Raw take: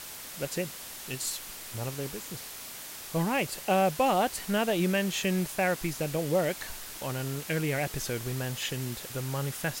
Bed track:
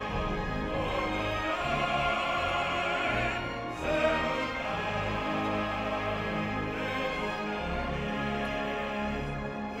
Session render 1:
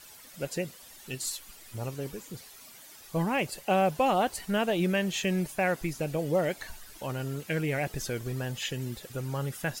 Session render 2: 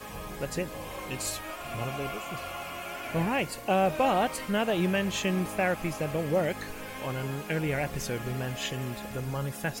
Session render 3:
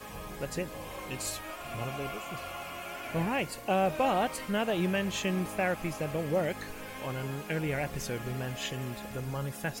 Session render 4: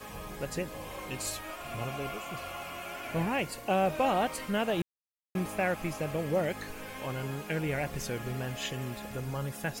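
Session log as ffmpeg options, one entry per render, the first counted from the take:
-af "afftdn=nr=12:nf=-43"
-filter_complex "[1:a]volume=0.376[s0];[0:a][s0]amix=inputs=2:normalize=0"
-af "volume=0.75"
-filter_complex "[0:a]asplit=3[s0][s1][s2];[s0]atrim=end=4.82,asetpts=PTS-STARTPTS,afade=t=out:st=4.816:d=0.004:c=hsin[s3];[s1]atrim=start=4.82:end=5.35,asetpts=PTS-STARTPTS,volume=0[s4];[s2]atrim=start=5.35,asetpts=PTS-STARTPTS,afade=t=in:d=0.004:c=hsin[s5];[s3][s4][s5]concat=n=3:v=0:a=1"

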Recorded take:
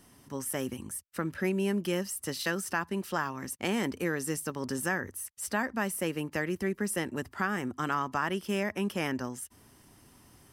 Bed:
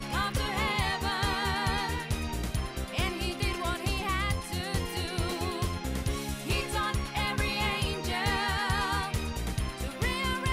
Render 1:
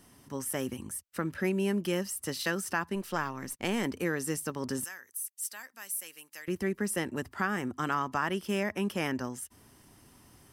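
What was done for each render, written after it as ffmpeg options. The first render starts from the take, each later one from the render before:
-filter_complex "[0:a]asettb=1/sr,asplit=3[s0][s1][s2];[s0]atrim=end=2.954[s3];[s1]atrim=start=2.95:end=3.85,asetpts=PTS-STARTPTS,afade=t=in:d=0.004:c=qsin,afade=t=out:st=0.896:d=0.004:c=qsin,aeval=exprs='if(lt(val(0),0),0.708*val(0),val(0))':c=same[s4];[s2]atrim=start=3.846[s5];[s3][s4]acrossfade=d=0.004:c1=hsin:c2=qsin[s6];[s6][s5]acrossfade=d=0.004:c1=qsin:c2=hsin,asettb=1/sr,asplit=3[s7][s8][s9];[s7]atrim=end=4.844[s10];[s8]atrim=start=4.84:end=6.48,asetpts=PTS-STARTPTS,afade=t=in:d=0.004:c=qsin,afade=t=out:st=1.636:d=0.004:c=qsin,aderivative[s11];[s9]atrim=start=6.476[s12];[s10][s11]acrossfade=d=0.004:c1=hsin:c2=qsin[s13];[s13][s12]acrossfade=d=0.004:c1=qsin:c2=hsin"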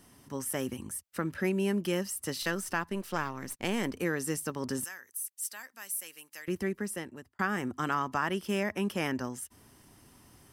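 -filter_complex "[0:a]asettb=1/sr,asplit=3[s0][s1][s2];[s0]atrim=end=2.424[s3];[s1]atrim=start=2.42:end=3.98,asetpts=PTS-STARTPTS,afade=t=in:d=0.004:c=qsin,afade=t=out:st=1.556:d=0.004:c=qsin,aeval=exprs='if(lt(val(0),0),0.708*val(0),val(0))':c=same[s4];[s2]atrim=start=3.976[s5];[s3][s4]acrossfade=d=0.004:c1=hsin:c2=qsin[s6];[s6][s5]acrossfade=d=0.004:c1=qsin:c2=hsin,asplit=2[s7][s8];[s7]atrim=end=7.39,asetpts=PTS-STARTPTS,afade=t=out:st=6.57:d=0.82[s9];[s8]atrim=start=7.39,asetpts=PTS-STARTPTS,afade=t=in:d=0.004:c=hsin[s10];[s9][s10]concat=n=2:v=0:a=1"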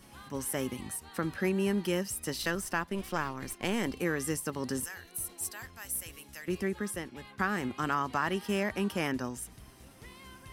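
-filter_complex "[1:a]volume=0.0891[s0];[0:a][s0]amix=inputs=2:normalize=0"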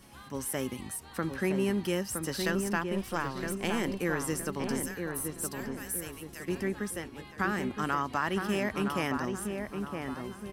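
-filter_complex "[0:a]asplit=2[s0][s1];[s1]adelay=966,lowpass=f=1600:p=1,volume=0.596,asplit=2[s2][s3];[s3]adelay=966,lowpass=f=1600:p=1,volume=0.48,asplit=2[s4][s5];[s5]adelay=966,lowpass=f=1600:p=1,volume=0.48,asplit=2[s6][s7];[s7]adelay=966,lowpass=f=1600:p=1,volume=0.48,asplit=2[s8][s9];[s9]adelay=966,lowpass=f=1600:p=1,volume=0.48,asplit=2[s10][s11];[s11]adelay=966,lowpass=f=1600:p=1,volume=0.48[s12];[s0][s2][s4][s6][s8][s10][s12]amix=inputs=7:normalize=0"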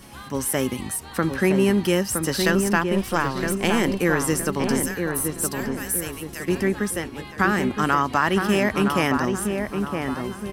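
-af "volume=3.16"

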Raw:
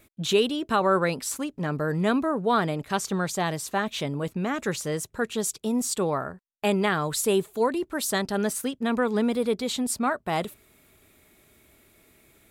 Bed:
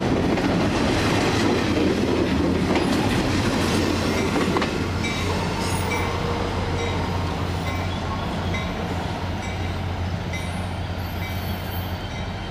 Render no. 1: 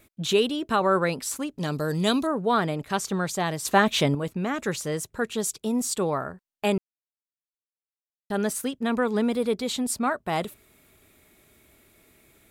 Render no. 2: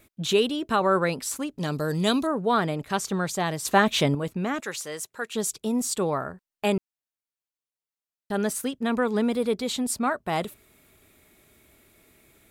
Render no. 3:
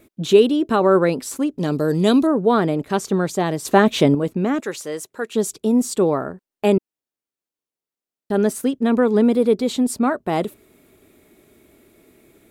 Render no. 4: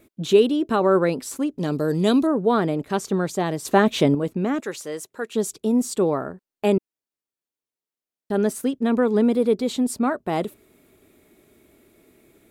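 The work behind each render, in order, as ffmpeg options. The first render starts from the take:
-filter_complex "[0:a]asettb=1/sr,asplit=3[s0][s1][s2];[s0]atrim=end=1.584[s3];[s1]atrim=start=1.58:end=2.27,asetpts=PTS-STARTPTS,afade=t=in:d=0.004:c=qsin,afade=t=out:st=0.686:d=0.004:c=qsin,highshelf=f=2700:t=q:w=1.5:g=10.5[s4];[s2]atrim=start=2.266[s5];[s3][s4]acrossfade=d=0.004:c1=hsin:c2=qsin[s6];[s6][s5]acrossfade=d=0.004:c1=qsin:c2=hsin,asplit=5[s7][s8][s9][s10][s11];[s7]atrim=end=3.652[s12];[s8]atrim=start=3.648:end=4.152,asetpts=PTS-STARTPTS,volume=2.37[s13];[s9]atrim=start=4.148:end=6.78,asetpts=PTS-STARTPTS,afade=t=out:st=2.628:d=0.004:c=hsin[s14];[s10]atrim=start=6.78:end=8.3,asetpts=PTS-STARTPTS,volume=0[s15];[s11]atrim=start=8.3,asetpts=PTS-STARTPTS,afade=t=in:d=0.004:c=hsin[s16];[s12][s13]acrossfade=d=0.004:c1=hsin:c2=hsin[s17];[s14][s15][s16]concat=n=3:v=0:a=1[s18];[s17][s18]acrossfade=d=0.004:c1=hsin:c2=hsin"
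-filter_complex "[0:a]asettb=1/sr,asplit=3[s0][s1][s2];[s0]atrim=end=4.604[s3];[s1]atrim=start=4.6:end=5.35,asetpts=PTS-STARTPTS,afade=t=in:d=0.004:c=qsin,afade=t=out:st=0.746:d=0.004:c=qsin,highpass=f=890:p=1[s4];[s2]atrim=start=5.346[s5];[s3][s4]acrossfade=d=0.004:c1=hsin:c2=qsin[s6];[s6][s5]acrossfade=d=0.004:c1=qsin:c2=hsin"
-af "equalizer=f=330:w=0.67:g=11"
-af "volume=0.708"

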